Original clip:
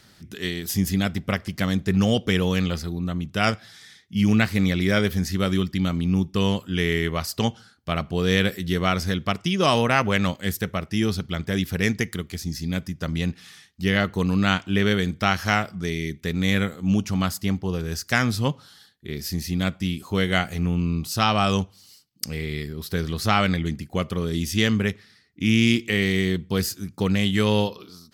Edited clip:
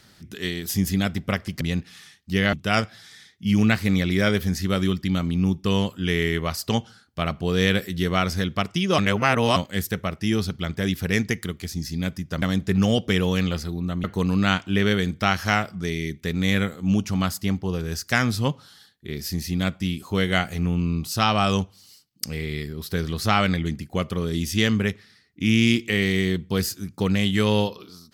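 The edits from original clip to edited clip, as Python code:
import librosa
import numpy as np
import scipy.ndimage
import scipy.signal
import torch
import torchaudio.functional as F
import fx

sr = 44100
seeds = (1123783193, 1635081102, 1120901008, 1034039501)

y = fx.edit(x, sr, fx.swap(start_s=1.61, length_s=1.62, other_s=13.12, other_length_s=0.92),
    fx.reverse_span(start_s=9.68, length_s=0.58), tone=tone)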